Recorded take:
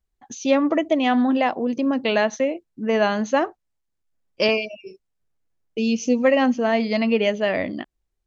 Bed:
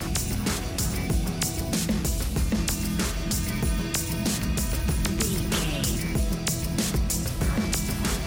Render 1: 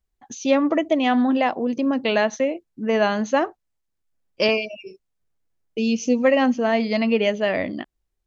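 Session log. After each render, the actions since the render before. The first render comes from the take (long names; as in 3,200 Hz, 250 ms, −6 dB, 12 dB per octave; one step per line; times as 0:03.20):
0:04.43–0:04.83: upward compression, threshold −30 dBFS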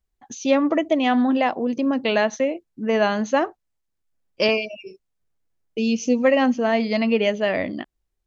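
no processing that can be heard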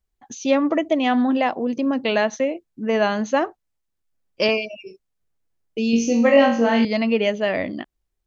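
0:05.91–0:06.85: flutter between parallel walls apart 3.7 metres, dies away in 0.47 s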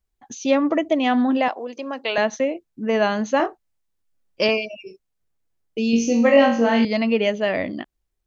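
0:01.48–0:02.18: high-pass filter 550 Hz
0:03.37–0:04.42: double-tracking delay 25 ms −5 dB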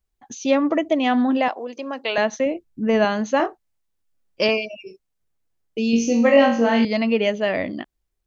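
0:02.46–0:03.05: low-shelf EQ 160 Hz +11.5 dB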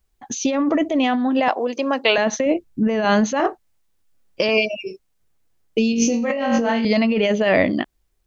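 in parallel at −2 dB: brickwall limiter −11.5 dBFS, peak gain reduction 8 dB
on the sum: compressor whose output falls as the input rises −18 dBFS, ratio −1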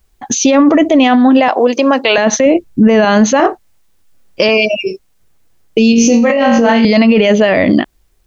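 boost into a limiter +12.5 dB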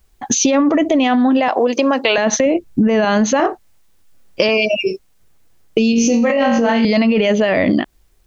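downward compressor, threshold −11 dBFS, peak gain reduction 7 dB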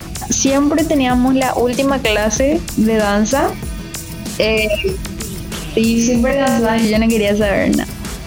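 mix in bed +0.5 dB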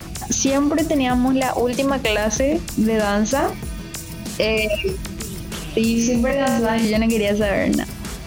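level −4.5 dB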